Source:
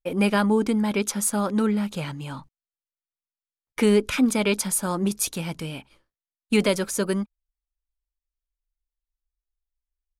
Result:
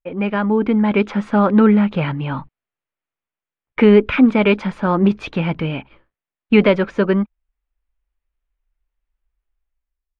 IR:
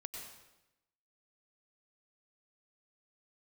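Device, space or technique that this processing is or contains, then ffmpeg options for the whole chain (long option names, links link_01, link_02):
action camera in a waterproof case: -af "lowpass=frequency=2700:width=0.5412,lowpass=frequency=2700:width=1.3066,dynaudnorm=framelen=180:gausssize=7:maxgain=12dB" -ar 44100 -c:a aac -b:a 96k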